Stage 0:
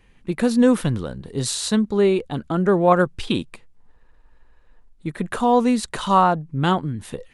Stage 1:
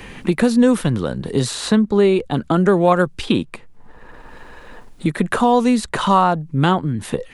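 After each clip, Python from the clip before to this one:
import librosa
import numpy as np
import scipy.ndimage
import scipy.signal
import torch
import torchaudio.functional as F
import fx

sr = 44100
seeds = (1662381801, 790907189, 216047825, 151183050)

y = fx.band_squash(x, sr, depth_pct=70)
y = F.gain(torch.from_numpy(y), 3.0).numpy()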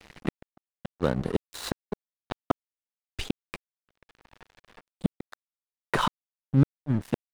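y = fx.high_shelf(x, sr, hz=3600.0, db=-7.0)
y = fx.gate_flip(y, sr, shuts_db=-9.0, range_db=-39)
y = np.sign(y) * np.maximum(np.abs(y) - 10.0 ** (-32.5 / 20.0), 0.0)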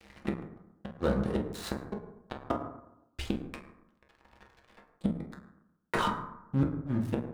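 y = fx.rev_fdn(x, sr, rt60_s=0.87, lf_ratio=1.1, hf_ratio=0.45, size_ms=87.0, drr_db=0.0)
y = F.gain(torch.from_numpy(y), -6.0).numpy()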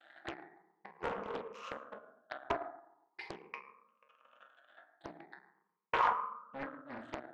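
y = fx.spec_ripple(x, sr, per_octave=0.83, drift_hz=0.42, depth_db=18)
y = fx.bandpass_edges(y, sr, low_hz=770.0, high_hz=2200.0)
y = fx.doppler_dist(y, sr, depth_ms=0.58)
y = F.gain(torch.from_numpy(y), -2.0).numpy()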